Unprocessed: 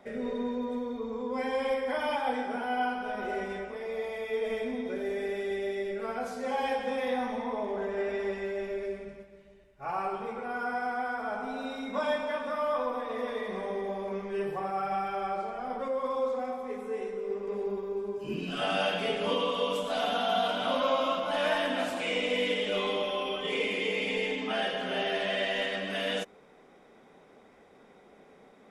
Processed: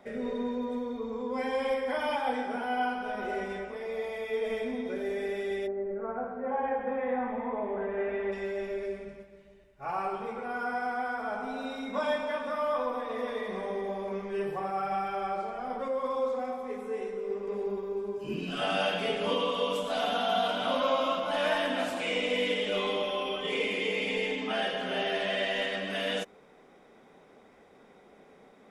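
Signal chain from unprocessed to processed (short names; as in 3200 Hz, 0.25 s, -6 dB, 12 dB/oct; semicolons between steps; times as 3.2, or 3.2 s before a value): 5.66–8.31 LPF 1200 Hz -> 3000 Hz 24 dB/oct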